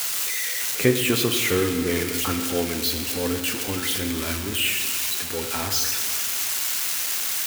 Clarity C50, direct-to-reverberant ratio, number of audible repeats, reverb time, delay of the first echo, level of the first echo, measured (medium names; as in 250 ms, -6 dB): 6.5 dB, 5.0 dB, no echo, 2.2 s, no echo, no echo